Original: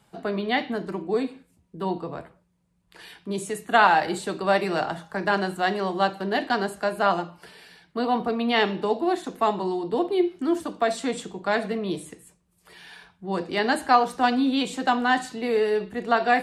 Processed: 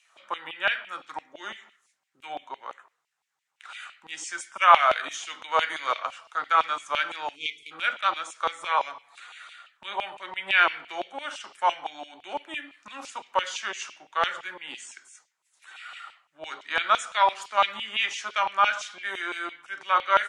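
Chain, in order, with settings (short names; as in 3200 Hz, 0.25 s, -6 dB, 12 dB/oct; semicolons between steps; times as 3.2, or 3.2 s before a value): wide varispeed 0.81×; LFO high-pass saw down 5.9 Hz 880–2800 Hz; spectral delete 7.36–7.71, 470–2000 Hz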